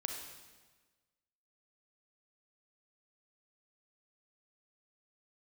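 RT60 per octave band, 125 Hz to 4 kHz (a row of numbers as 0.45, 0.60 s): 1.5, 1.4, 1.4, 1.3, 1.3, 1.2 s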